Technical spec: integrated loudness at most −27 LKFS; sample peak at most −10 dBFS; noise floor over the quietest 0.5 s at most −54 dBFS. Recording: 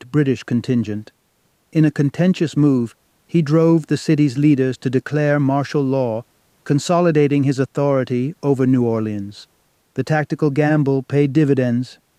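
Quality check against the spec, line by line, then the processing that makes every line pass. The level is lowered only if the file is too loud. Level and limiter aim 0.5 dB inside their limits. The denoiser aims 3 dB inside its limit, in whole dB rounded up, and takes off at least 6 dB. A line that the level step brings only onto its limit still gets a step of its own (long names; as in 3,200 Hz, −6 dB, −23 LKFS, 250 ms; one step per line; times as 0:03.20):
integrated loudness −18.0 LKFS: out of spec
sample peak −4.5 dBFS: out of spec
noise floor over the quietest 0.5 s −62 dBFS: in spec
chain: level −9.5 dB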